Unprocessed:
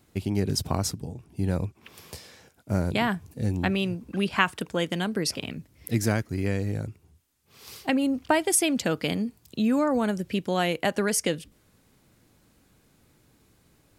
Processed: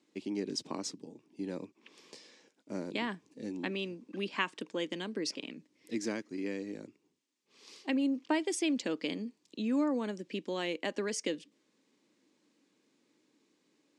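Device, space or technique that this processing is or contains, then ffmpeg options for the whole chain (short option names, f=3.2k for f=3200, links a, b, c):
television speaker: -af "highpass=f=230:w=0.5412,highpass=f=230:w=1.3066,equalizer=f=300:t=q:w=4:g=5,equalizer=f=720:t=q:w=4:g=-9,equalizer=f=1.4k:t=q:w=4:g=-8,lowpass=f=7.3k:w=0.5412,lowpass=f=7.3k:w=1.3066,volume=-7.5dB"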